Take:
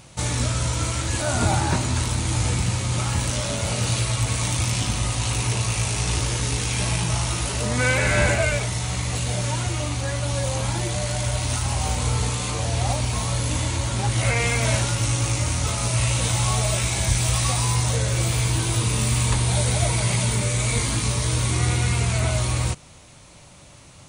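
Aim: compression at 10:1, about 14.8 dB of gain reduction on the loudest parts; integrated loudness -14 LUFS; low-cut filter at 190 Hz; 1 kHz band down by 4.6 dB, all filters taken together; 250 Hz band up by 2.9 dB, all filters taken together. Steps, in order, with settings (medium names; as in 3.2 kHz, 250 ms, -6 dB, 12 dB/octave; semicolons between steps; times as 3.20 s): high-pass 190 Hz; peaking EQ 250 Hz +7 dB; peaking EQ 1 kHz -6.5 dB; compression 10:1, threshold -33 dBFS; trim +21 dB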